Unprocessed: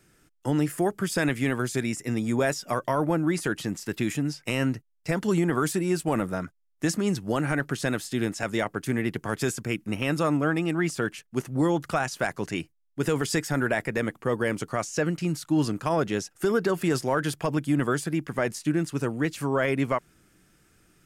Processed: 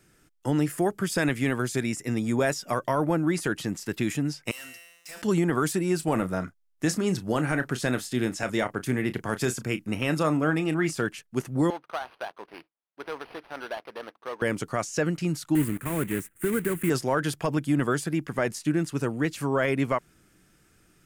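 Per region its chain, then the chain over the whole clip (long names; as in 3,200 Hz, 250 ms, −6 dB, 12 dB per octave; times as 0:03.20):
0:04.51–0:05.22: first difference + tuned comb filter 170 Hz, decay 1.4 s, mix 80% + leveller curve on the samples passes 5
0:05.96–0:11.03: de-essing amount 35% + double-tracking delay 32 ms −12 dB
0:11.70–0:14.42: running median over 25 samples + high-pass filter 780 Hz + linearly interpolated sample-rate reduction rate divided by 6×
0:15.55–0:16.90: one scale factor per block 3 bits + drawn EQ curve 320 Hz 0 dB, 750 Hz −14 dB, 2,000 Hz +1 dB, 5,300 Hz −23 dB, 8,600 Hz +2 dB
whole clip: no processing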